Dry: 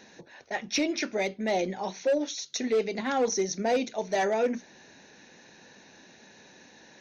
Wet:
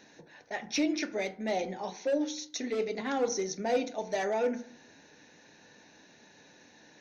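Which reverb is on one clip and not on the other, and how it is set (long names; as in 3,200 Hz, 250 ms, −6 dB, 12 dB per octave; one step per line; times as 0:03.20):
feedback delay network reverb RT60 0.58 s, low-frequency decay 1.2×, high-frequency decay 0.35×, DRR 8 dB
level −4.5 dB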